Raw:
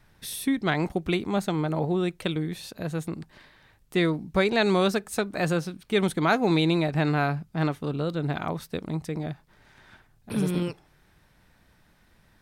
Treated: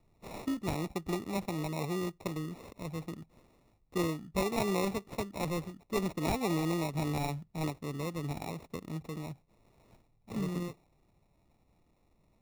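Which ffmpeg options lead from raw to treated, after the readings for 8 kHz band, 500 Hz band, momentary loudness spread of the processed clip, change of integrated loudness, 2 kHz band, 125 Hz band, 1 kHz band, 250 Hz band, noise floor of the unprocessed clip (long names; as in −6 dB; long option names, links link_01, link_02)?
−5.0 dB, −9.5 dB, 11 LU, −9.0 dB, −13.0 dB, −8.5 dB, −8.0 dB, −8.5 dB, −62 dBFS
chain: -filter_complex "[0:a]bandreject=frequency=2600:width=12,acrossover=split=280[link_01][link_02];[link_02]acrusher=samples=28:mix=1:aa=0.000001[link_03];[link_01][link_03]amix=inputs=2:normalize=0,volume=-8.5dB"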